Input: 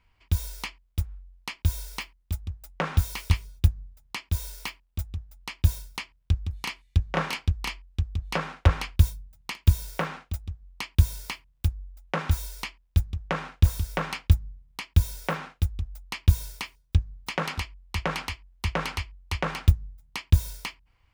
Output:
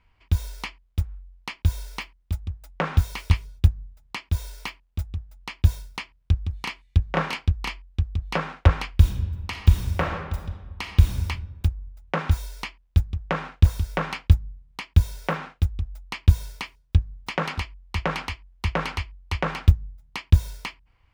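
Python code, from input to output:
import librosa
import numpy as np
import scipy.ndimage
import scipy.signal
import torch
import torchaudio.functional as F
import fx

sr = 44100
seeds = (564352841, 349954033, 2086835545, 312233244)

y = fx.reverb_throw(x, sr, start_s=8.91, length_s=2.34, rt60_s=1.3, drr_db=3.5)
y = fx.high_shelf(y, sr, hz=5700.0, db=-10.5)
y = y * 10.0 ** (3.0 / 20.0)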